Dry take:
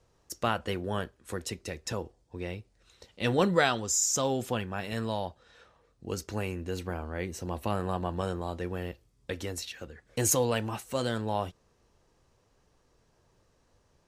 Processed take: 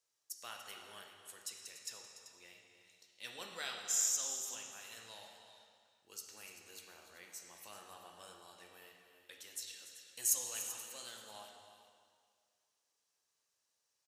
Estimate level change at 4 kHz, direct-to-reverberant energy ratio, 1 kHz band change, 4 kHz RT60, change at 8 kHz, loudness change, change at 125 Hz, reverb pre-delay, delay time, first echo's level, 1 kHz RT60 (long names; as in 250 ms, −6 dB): −8.0 dB, 0.5 dB, −20.0 dB, 1.8 s, −4.5 dB, −8.0 dB, below −35 dB, 6 ms, 291 ms, −13.5 dB, 2.0 s